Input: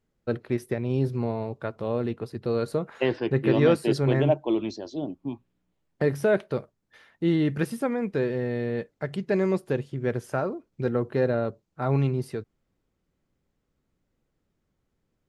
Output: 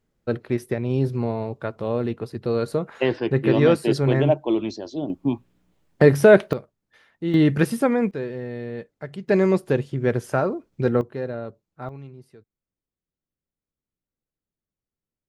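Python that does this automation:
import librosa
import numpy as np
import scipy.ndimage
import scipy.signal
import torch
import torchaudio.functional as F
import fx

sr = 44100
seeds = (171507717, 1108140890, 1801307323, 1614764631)

y = fx.gain(x, sr, db=fx.steps((0.0, 3.0), (5.1, 10.0), (6.53, -2.0), (7.34, 7.0), (8.11, -3.5), (9.28, 5.5), (11.01, -5.5), (11.89, -16.5)))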